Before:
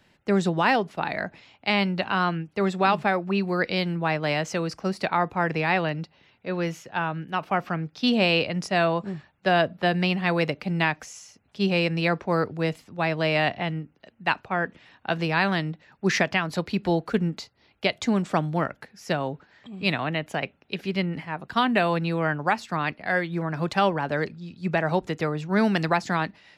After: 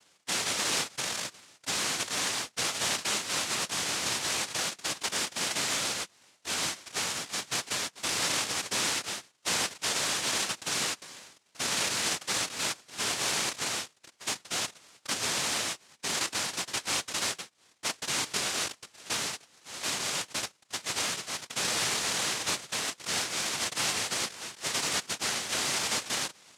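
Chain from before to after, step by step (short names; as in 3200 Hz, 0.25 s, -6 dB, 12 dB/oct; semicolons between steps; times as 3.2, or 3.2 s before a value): notch 1800 Hz, Q 19; in parallel at -10 dB: sine folder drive 13 dB, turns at -9.5 dBFS; on the sum: ring modulator 270 Hz; noise vocoder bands 1; gain -8.5 dB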